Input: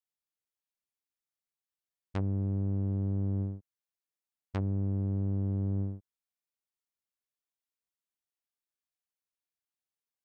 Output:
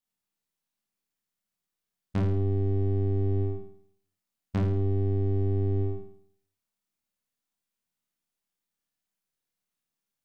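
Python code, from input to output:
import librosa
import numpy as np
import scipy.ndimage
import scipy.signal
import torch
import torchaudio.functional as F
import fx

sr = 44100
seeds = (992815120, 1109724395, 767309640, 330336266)

p1 = np.where(x < 0.0, 10.0 ** (-3.0 / 20.0) * x, x)
p2 = fx.low_shelf(p1, sr, hz=130.0, db=3.0)
p3 = np.clip(p2, -10.0 ** (-31.5 / 20.0), 10.0 ** (-31.5 / 20.0))
p4 = p2 + (p3 * 10.0 ** (-6.0 / 20.0))
p5 = fx.peak_eq(p4, sr, hz=200.0, db=9.5, octaves=0.65)
p6 = fx.doubler(p5, sr, ms=28.0, db=-2.5)
y = p6 + fx.room_flutter(p6, sr, wall_m=9.2, rt60_s=0.62, dry=0)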